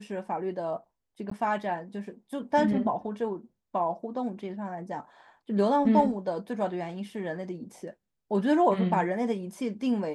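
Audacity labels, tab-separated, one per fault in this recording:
1.300000	1.310000	drop-out 14 ms

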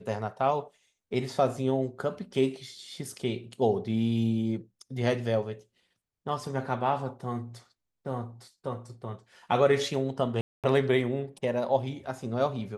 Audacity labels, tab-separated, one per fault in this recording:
10.410000	10.640000	drop-out 227 ms

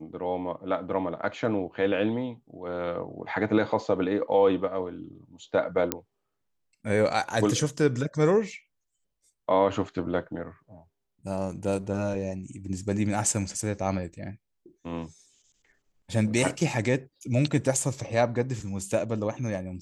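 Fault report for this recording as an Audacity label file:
5.920000	5.920000	click −7 dBFS

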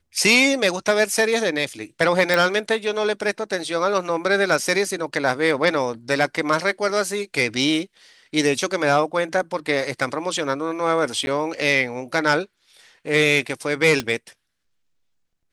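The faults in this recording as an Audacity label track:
2.340000	2.340000	click
11.260000	11.270000	drop-out 10 ms
14.000000	14.000000	click −9 dBFS

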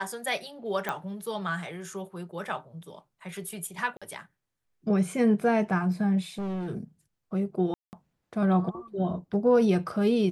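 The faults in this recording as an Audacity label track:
0.890000	0.890000	click −16 dBFS
3.970000	4.020000	drop-out 46 ms
6.380000	6.710000	clipping −29.5 dBFS
7.740000	7.930000	drop-out 189 ms

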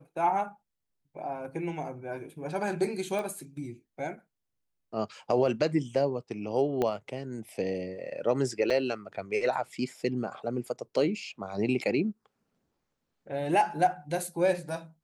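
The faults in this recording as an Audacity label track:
3.190000	3.190000	click
6.820000	6.820000	click −16 dBFS
8.700000	8.700000	drop-out 4 ms

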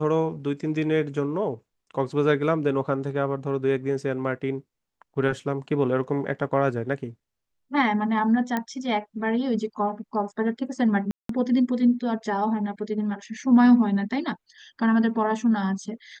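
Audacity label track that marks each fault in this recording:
8.570000	8.570000	click −13 dBFS
11.110000	11.290000	drop-out 183 ms

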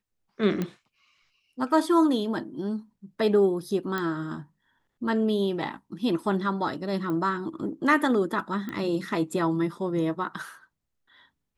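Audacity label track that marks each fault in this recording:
0.620000	0.620000	click −16 dBFS
3.980000	3.980000	click −16 dBFS
7.100000	7.100000	click −21 dBFS
8.690000	8.690000	click −22 dBFS

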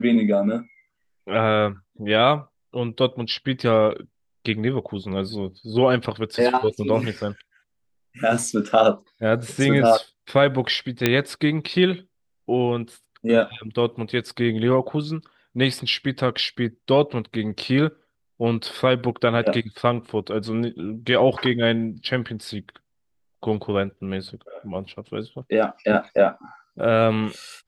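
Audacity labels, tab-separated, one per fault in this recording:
11.060000	11.060000	click −3 dBFS

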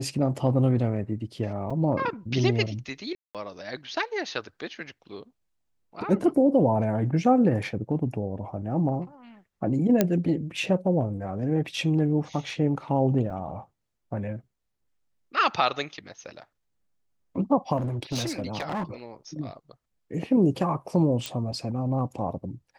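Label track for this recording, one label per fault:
1.700000	1.710000	drop-out 5.3 ms
3.150000	3.350000	drop-out 197 ms
10.010000	10.010000	click −6 dBFS
13.300000	13.310000	drop-out 5.3 ms
17.770000	18.840000	clipping −25 dBFS
21.260000	21.260000	click −15 dBFS

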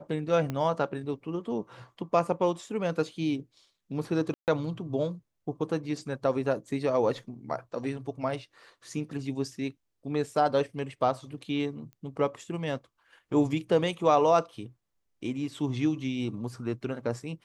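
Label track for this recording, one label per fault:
0.500000	0.500000	click −19 dBFS
4.340000	4.480000	drop-out 138 ms
11.930000	11.930000	click −35 dBFS

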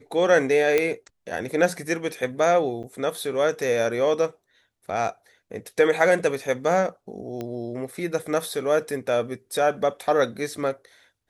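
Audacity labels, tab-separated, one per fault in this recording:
0.780000	0.780000	click −8 dBFS
2.830000	2.840000	drop-out 7.9 ms
7.410000	7.410000	click −19 dBFS

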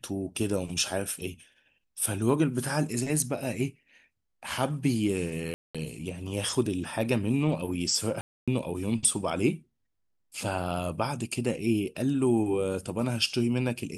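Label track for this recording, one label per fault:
5.540000	5.750000	drop-out 206 ms
8.210000	8.480000	drop-out 266 ms

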